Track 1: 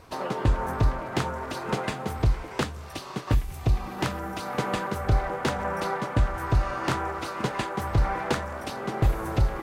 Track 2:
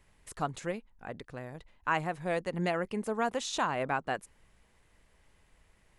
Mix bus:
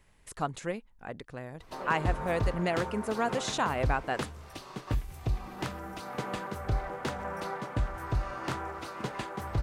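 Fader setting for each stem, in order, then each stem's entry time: -7.5 dB, +1.0 dB; 1.60 s, 0.00 s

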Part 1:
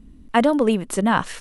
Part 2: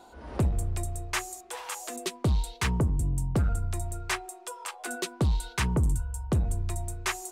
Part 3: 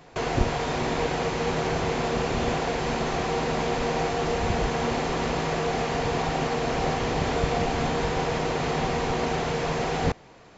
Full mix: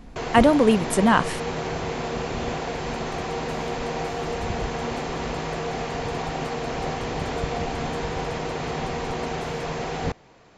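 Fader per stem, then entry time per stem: +1.0 dB, -19.5 dB, -2.5 dB; 0.00 s, 2.35 s, 0.00 s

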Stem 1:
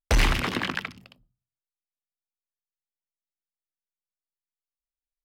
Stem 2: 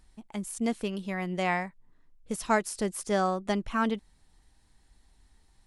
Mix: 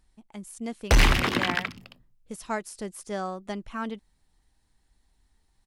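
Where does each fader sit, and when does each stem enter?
+2.5 dB, -5.5 dB; 0.80 s, 0.00 s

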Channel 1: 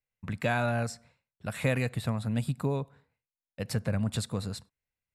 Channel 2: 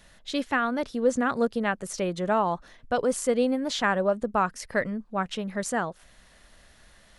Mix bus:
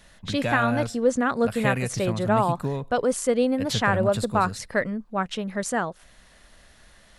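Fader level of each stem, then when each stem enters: +1.5 dB, +2.0 dB; 0.00 s, 0.00 s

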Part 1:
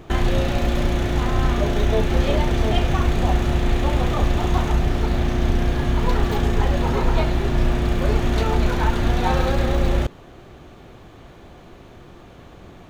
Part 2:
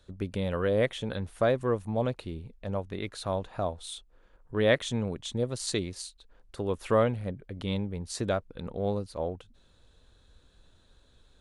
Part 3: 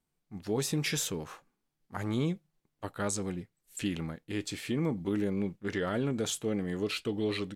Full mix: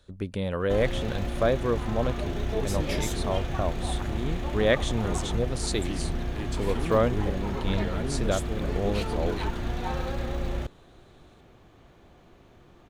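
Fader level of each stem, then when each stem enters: -11.0 dB, +1.0 dB, -3.5 dB; 0.60 s, 0.00 s, 2.05 s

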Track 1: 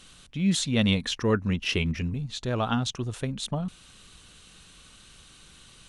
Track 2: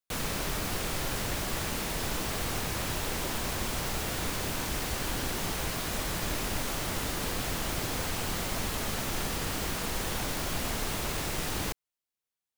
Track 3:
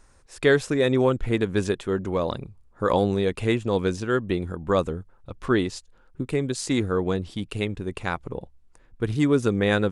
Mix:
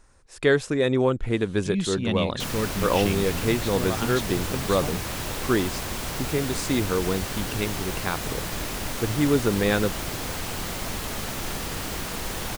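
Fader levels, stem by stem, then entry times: -3.5 dB, +1.5 dB, -1.0 dB; 1.30 s, 2.30 s, 0.00 s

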